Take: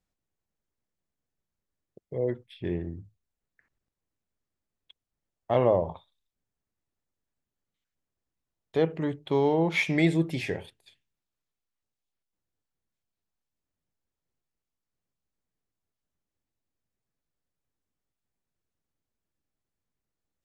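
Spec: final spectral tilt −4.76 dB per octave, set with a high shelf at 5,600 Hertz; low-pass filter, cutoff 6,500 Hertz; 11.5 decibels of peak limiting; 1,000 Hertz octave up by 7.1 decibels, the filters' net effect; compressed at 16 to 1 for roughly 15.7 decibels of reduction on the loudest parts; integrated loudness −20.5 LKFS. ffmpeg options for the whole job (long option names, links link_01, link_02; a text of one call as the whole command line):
ffmpeg -i in.wav -af "lowpass=6500,equalizer=frequency=1000:width_type=o:gain=9,highshelf=frequency=5600:gain=6.5,acompressor=threshold=-30dB:ratio=16,volume=20.5dB,alimiter=limit=-8.5dB:level=0:latency=1" out.wav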